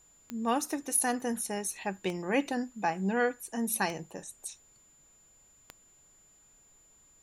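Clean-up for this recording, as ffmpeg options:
ffmpeg -i in.wav -af "adeclick=threshold=4,bandreject=frequency=7100:width=30,agate=range=-21dB:threshold=-54dB" out.wav

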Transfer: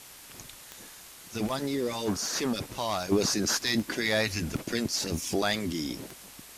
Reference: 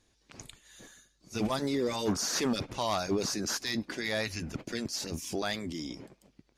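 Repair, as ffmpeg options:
ffmpeg -i in.wav -af "adeclick=threshold=4,afwtdn=0.0045,asetnsamples=nb_out_samples=441:pad=0,asendcmd='3.12 volume volume -5.5dB',volume=0dB" out.wav

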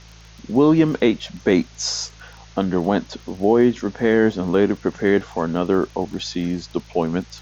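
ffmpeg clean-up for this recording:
ffmpeg -i in.wav -af "adeclick=threshold=4,bandreject=frequency=54.8:width_type=h:width=4,bandreject=frequency=109.6:width_type=h:width=4,bandreject=frequency=164.4:width_type=h:width=4,afwtdn=0.0056" out.wav

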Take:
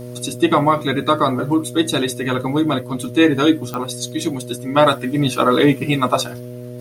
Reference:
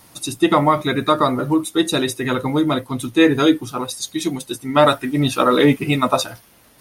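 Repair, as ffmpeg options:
ffmpeg -i in.wav -af "adeclick=threshold=4,bandreject=frequency=122.6:width_type=h:width=4,bandreject=frequency=245.2:width_type=h:width=4,bandreject=frequency=367.8:width_type=h:width=4,bandreject=frequency=490.4:width_type=h:width=4,bandreject=frequency=613:width_type=h:width=4" out.wav

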